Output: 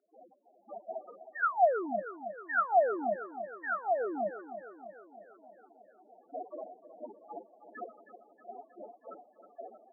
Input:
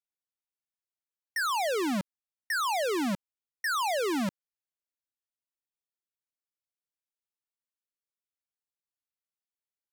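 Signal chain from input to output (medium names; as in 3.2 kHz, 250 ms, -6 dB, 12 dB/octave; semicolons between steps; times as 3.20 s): spectral levelling over time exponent 0.2; reverb removal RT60 0.52 s; gate with hold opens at -23 dBFS; level rider gain up to 16.5 dB; random-step tremolo; loudest bins only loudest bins 2; two resonant band-passes 990 Hz, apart 0.95 oct; distance through air 270 m; feedback delay 316 ms, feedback 59%, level -12 dB; trim +6.5 dB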